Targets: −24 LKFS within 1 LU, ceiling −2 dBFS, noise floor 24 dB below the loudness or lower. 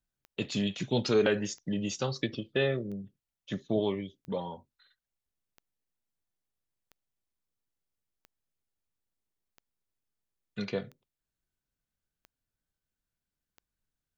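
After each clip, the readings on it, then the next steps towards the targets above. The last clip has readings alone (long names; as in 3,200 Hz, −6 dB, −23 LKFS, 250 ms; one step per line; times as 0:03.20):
number of clicks 11; integrated loudness −32.0 LKFS; sample peak −14.5 dBFS; target loudness −24.0 LKFS
→ click removal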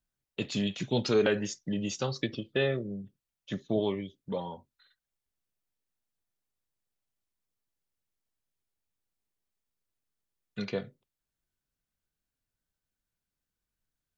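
number of clicks 0; integrated loudness −32.0 LKFS; sample peak −14.5 dBFS; target loudness −24.0 LKFS
→ level +8 dB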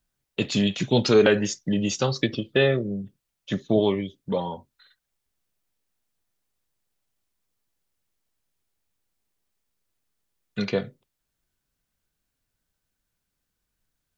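integrated loudness −24.0 LKFS; sample peak −6.5 dBFS; background noise floor −81 dBFS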